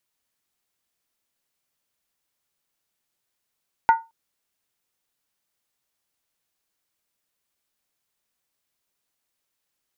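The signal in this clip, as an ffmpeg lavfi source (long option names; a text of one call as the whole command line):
ffmpeg -f lavfi -i "aevalsrc='0.376*pow(10,-3*t/0.24)*sin(2*PI*909*t)+0.126*pow(10,-3*t/0.19)*sin(2*PI*1448.9*t)+0.0422*pow(10,-3*t/0.164)*sin(2*PI*1941.6*t)+0.0141*pow(10,-3*t/0.158)*sin(2*PI*2087.1*t)+0.00473*pow(10,-3*t/0.147)*sin(2*PI*2411.6*t)':duration=0.22:sample_rate=44100" out.wav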